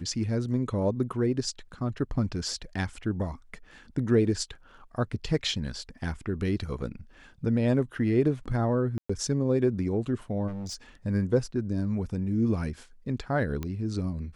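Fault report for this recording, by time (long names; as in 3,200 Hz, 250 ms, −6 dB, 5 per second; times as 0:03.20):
0:08.98–0:09.10: drop-out 115 ms
0:10.47–0:10.75: clipping −32.5 dBFS
0:13.63: click −20 dBFS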